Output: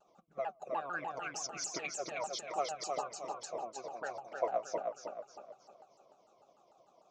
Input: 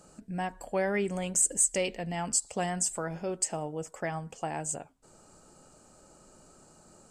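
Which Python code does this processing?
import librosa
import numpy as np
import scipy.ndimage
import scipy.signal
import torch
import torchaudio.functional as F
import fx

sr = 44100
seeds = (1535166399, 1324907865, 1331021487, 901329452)

p1 = fx.pitch_heads(x, sr, semitones=-4.0)
p2 = p1 + 0.79 * np.pad(p1, (int(5.5 * sr / 1000.0), 0))[:len(p1)]
p3 = fx.hpss(p2, sr, part='harmonic', gain_db=-15)
p4 = fx.backlash(p3, sr, play_db=-38.5)
p5 = p3 + (p4 * 10.0 ** (-7.0 / 20.0))
p6 = fx.vowel_filter(p5, sr, vowel='a')
p7 = fx.echo_feedback(p6, sr, ms=314, feedback_pct=42, wet_db=-4)
p8 = fx.vibrato_shape(p7, sr, shape='saw_down', rate_hz=6.7, depth_cents=250.0)
y = p8 * 10.0 ** (9.0 / 20.0)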